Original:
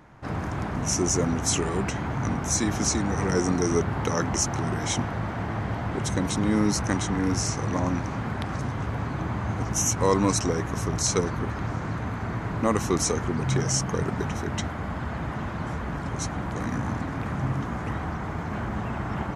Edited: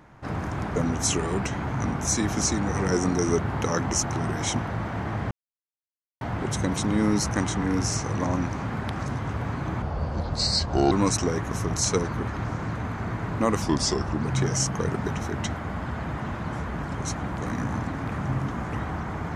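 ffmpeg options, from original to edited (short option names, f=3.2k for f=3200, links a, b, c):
-filter_complex "[0:a]asplit=7[a][b][c][d][e][f][g];[a]atrim=end=0.762[h];[b]atrim=start=1.188:end=5.74,asetpts=PTS-STARTPTS,afade=t=out:st=4.548:d=0.004:c=hsin,apad=pad_dur=0.9[i];[c]atrim=start=5.74:end=9.354,asetpts=PTS-STARTPTS,afade=t=in:d=0.004:c=hsin[j];[d]atrim=start=9.35:end=10.14,asetpts=PTS-STARTPTS,asetrate=31752,aresample=44100[k];[e]atrim=start=10.136:end=12.844[l];[f]atrim=start=12.84:end=13.35,asetpts=PTS-STARTPTS,asetrate=37926,aresample=44100,atrim=end_sample=26152,asetpts=PTS-STARTPTS[m];[g]atrim=start=13.346[n];[i][j]concat=n=2:v=0:a=1[o];[h][o]acrossfade=d=0.004:c1=hsin:c2=hsin[p];[p][k]acrossfade=d=0.004:c1=hsin:c2=hsin[q];[q][l]acrossfade=d=0.004:c1=hsin:c2=hsin[r];[r][m]acrossfade=d=0.004:c1=hsin:c2=hsin[s];[s][n]acrossfade=d=0.004:c1=hsin:c2=hsin"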